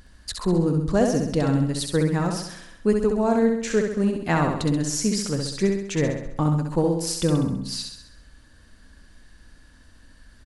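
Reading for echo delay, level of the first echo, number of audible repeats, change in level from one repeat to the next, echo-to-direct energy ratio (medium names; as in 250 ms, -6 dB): 66 ms, -4.5 dB, 6, -5.5 dB, -3.0 dB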